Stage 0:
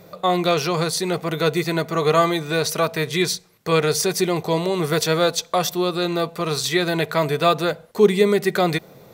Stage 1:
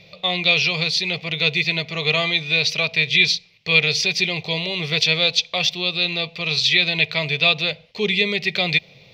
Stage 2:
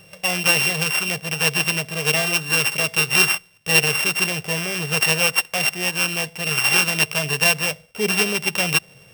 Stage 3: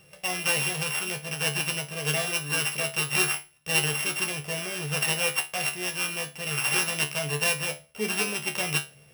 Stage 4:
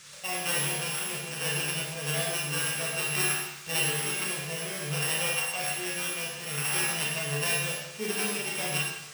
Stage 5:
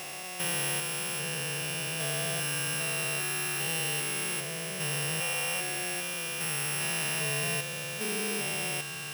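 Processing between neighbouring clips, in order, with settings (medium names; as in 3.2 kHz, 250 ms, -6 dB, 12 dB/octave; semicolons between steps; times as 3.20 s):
FFT filter 140 Hz 0 dB, 320 Hz -12 dB, 550 Hz -5 dB, 1.5 kHz -12 dB, 2.4 kHz +15 dB, 5.1 kHz +6 dB, 8.8 kHz -21 dB; trim -1 dB
sorted samples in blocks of 16 samples
feedback comb 73 Hz, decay 0.25 s, harmonics all, mix 90%
band noise 1.1–9.1 kHz -46 dBFS; Schroeder reverb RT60 0.88 s, combs from 28 ms, DRR -2 dB; trim -5.5 dB
spectrogram pixelated in time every 400 ms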